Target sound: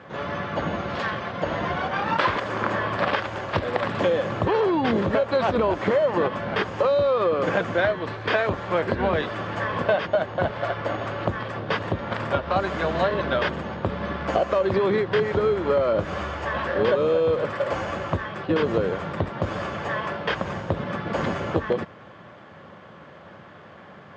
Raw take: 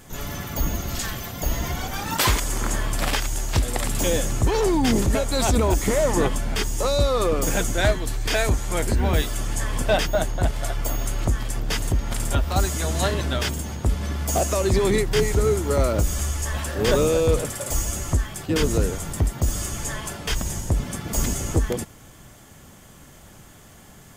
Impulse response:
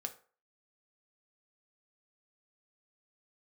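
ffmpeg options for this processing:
-filter_complex "[0:a]asplit=2[link_01][link_02];[link_02]acrusher=samples=12:mix=1:aa=0.000001,volume=-5dB[link_03];[link_01][link_03]amix=inputs=2:normalize=0,highpass=frequency=110:width=0.5412,highpass=frequency=110:width=1.3066,equalizer=frequency=130:width_type=q:width=4:gain=-7,equalizer=frequency=260:width_type=q:width=4:gain=-6,equalizer=frequency=550:width_type=q:width=4:gain=7,equalizer=frequency=1100:width_type=q:width=4:gain=6,equalizer=frequency=1600:width_type=q:width=4:gain=5,lowpass=frequency=3500:width=0.5412,lowpass=frequency=3500:width=1.3066,acompressor=threshold=-18dB:ratio=6"

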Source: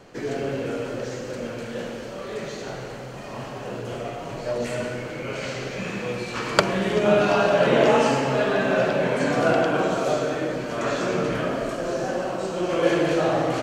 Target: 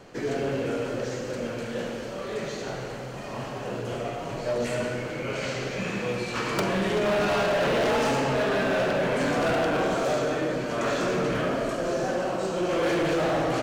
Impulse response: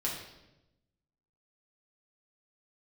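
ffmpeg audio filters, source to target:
-af "volume=21.5dB,asoftclip=hard,volume=-21.5dB"

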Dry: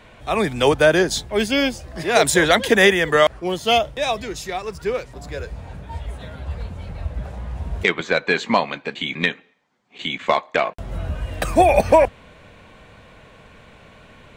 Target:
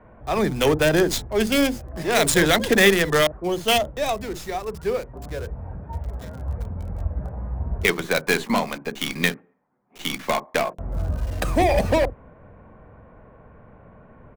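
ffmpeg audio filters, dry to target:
ffmpeg -i in.wav -filter_complex "[0:a]lowpass=frequency=12000:width=0.5412,lowpass=frequency=12000:width=1.3066,acrossover=split=380|1500[link_01][link_02][link_03];[link_01]asplit=2[link_04][link_05];[link_05]adelay=46,volume=-4dB[link_06];[link_04][link_06]amix=inputs=2:normalize=0[link_07];[link_02]asoftclip=type=hard:threshold=-19dB[link_08];[link_03]acrusher=bits=4:dc=4:mix=0:aa=0.000001[link_09];[link_07][link_08][link_09]amix=inputs=3:normalize=0,volume=-1dB" out.wav

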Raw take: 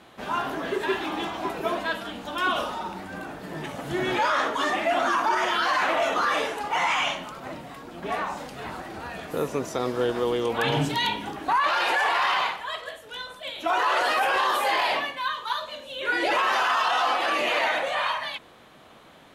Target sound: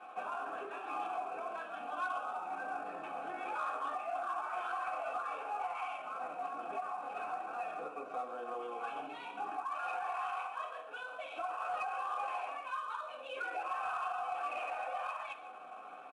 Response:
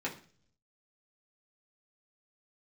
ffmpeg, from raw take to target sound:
-filter_complex "[0:a]highpass=140,lowpass=3900,acompressor=threshold=-39dB:ratio=4,asplit=3[link_01][link_02][link_03];[link_01]bandpass=frequency=730:width_type=q:width=8,volume=0dB[link_04];[link_02]bandpass=frequency=1090:width_type=q:width=8,volume=-6dB[link_05];[link_03]bandpass=frequency=2440:width_type=q:width=8,volume=-9dB[link_06];[link_04][link_05][link_06]amix=inputs=3:normalize=0,highshelf=frequency=3000:gain=3,flanger=delay=9.1:depth=7.6:regen=90:speed=0.32:shape=sinusoidal[link_07];[1:a]atrim=start_sample=2205,afade=type=out:start_time=0.3:duration=0.01,atrim=end_sample=13671[link_08];[link_07][link_08]afir=irnorm=-1:irlink=0,alimiter=level_in=15dB:limit=-24dB:level=0:latency=1:release=417,volume=-15dB,equalizer=frequency=1400:width_type=o:width=0.62:gain=9.5,aecho=1:1:168:0.237,asoftclip=type=tanh:threshold=-35dB,atempo=1.2,volume=9dB" -ar 22050 -c:a adpcm_ima_wav

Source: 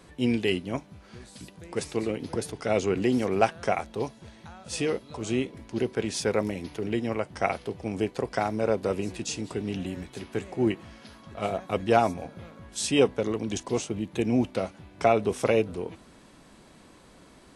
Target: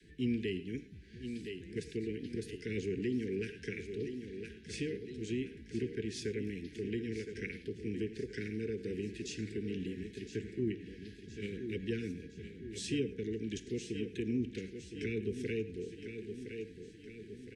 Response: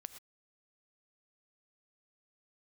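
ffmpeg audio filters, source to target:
-filter_complex "[0:a]aecho=1:1:1014|2028|3042|4056|5070:0.266|0.133|0.0665|0.0333|0.0166,areverse,acompressor=mode=upward:threshold=-40dB:ratio=2.5,areverse,adynamicequalizer=threshold=0.00891:dfrequency=120:dqfactor=0.71:tfrequency=120:tqfactor=0.71:attack=5:release=100:ratio=0.375:range=2.5:mode=cutabove:tftype=bell,asuperstop=centerf=860:order=20:qfactor=0.75,aemphasis=mode=reproduction:type=50fm[link_01];[1:a]atrim=start_sample=2205,atrim=end_sample=3528,asetrate=30429,aresample=44100[link_02];[link_01][link_02]afir=irnorm=-1:irlink=0,acrossover=split=220[link_03][link_04];[link_04]acompressor=threshold=-35dB:ratio=3[link_05];[link_03][link_05]amix=inputs=2:normalize=0,volume=-2dB"

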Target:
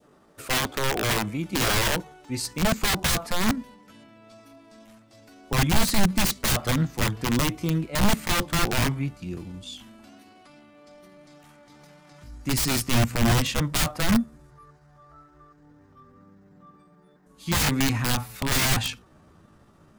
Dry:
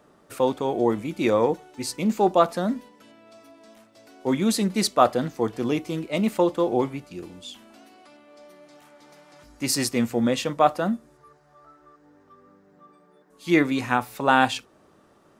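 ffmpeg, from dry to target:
ffmpeg -i in.wav -af "adynamicequalizer=threshold=0.0158:dfrequency=1300:dqfactor=0.81:tfrequency=1300:tqfactor=0.81:attack=5:release=100:ratio=0.375:range=1.5:mode=boostabove:tftype=bell,aeval=exprs='(mod(7.94*val(0)+1,2)-1)/7.94':channel_layout=same,atempo=0.77,asubboost=boost=4.5:cutoff=180" out.wav

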